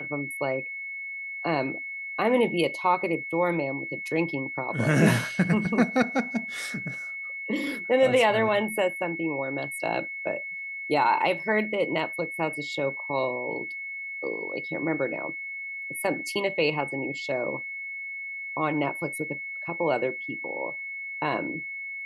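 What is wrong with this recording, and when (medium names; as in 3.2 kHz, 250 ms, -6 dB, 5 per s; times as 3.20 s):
whine 2.2 kHz -33 dBFS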